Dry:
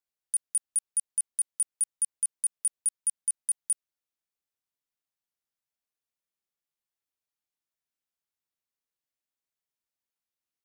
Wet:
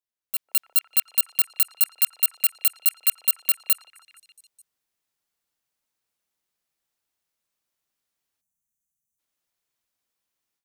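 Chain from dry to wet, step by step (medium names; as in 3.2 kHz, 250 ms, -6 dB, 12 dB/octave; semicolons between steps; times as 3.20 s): bit-reversed sample order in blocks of 32 samples; spectral selection erased 8.41–9.19 s, 240–5800 Hz; on a send: repeats whose band climbs or falls 148 ms, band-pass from 660 Hz, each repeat 0.7 oct, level -11 dB; on the sum: level rider gain up to 12.5 dB; in parallel at -7.5 dB: hard clipper -20.5 dBFS, distortion -8 dB; on the sum: dynamic bell 3.4 kHz, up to +7 dB, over -38 dBFS, Q 0.96; trim -6.5 dB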